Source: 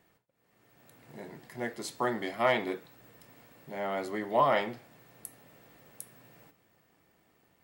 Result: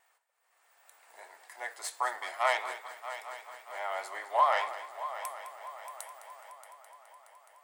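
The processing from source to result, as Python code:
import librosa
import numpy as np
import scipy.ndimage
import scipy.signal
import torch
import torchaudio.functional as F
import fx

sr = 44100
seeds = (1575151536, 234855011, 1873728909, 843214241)

y = fx.tracing_dist(x, sr, depth_ms=0.078)
y = scipy.signal.sosfilt(scipy.signal.butter(4, 780.0, 'highpass', fs=sr, output='sos'), y)
y = fx.high_shelf(y, sr, hz=2000.0, db=-9.0)
y = fx.echo_heads(y, sr, ms=210, heads='first and third', feedback_pct=66, wet_db=-14)
y = fx.vibrato(y, sr, rate_hz=5.0, depth_cents=33.0)
y = fx.peak_eq(y, sr, hz=8500.0, db=11.0, octaves=0.84)
y = y * 10.0 ** (4.5 / 20.0)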